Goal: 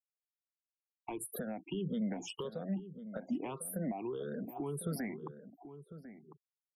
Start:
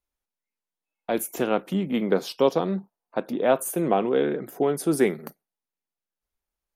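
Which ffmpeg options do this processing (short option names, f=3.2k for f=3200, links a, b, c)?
-filter_complex "[0:a]afftfilt=real='re*pow(10,19/40*sin(2*PI*(0.67*log(max(b,1)*sr/1024/100)/log(2)-(1.7)*(pts-256)/sr)))':imag='im*pow(10,19/40*sin(2*PI*(0.67*log(max(b,1)*sr/1024/100)/log(2)-(1.7)*(pts-256)/sr)))':win_size=1024:overlap=0.75,bandreject=f=60:t=h:w=6,bandreject=f=120:t=h:w=6,bandreject=f=180:t=h:w=6,afftfilt=real='re*gte(hypot(re,im),0.0251)':imag='im*gte(hypot(re,im),0.0251)':win_size=1024:overlap=0.75,acompressor=threshold=-33dB:ratio=4,alimiter=level_in=3dB:limit=-24dB:level=0:latency=1:release=47,volume=-3dB,acrossover=split=220[a][b];[b]acompressor=threshold=-48dB:ratio=2.5[c];[a][c]amix=inputs=2:normalize=0,asplit=2[d][e];[e]adelay=1050,volume=-12dB,highshelf=f=4k:g=-23.6[f];[d][f]amix=inputs=2:normalize=0,volume=3.5dB"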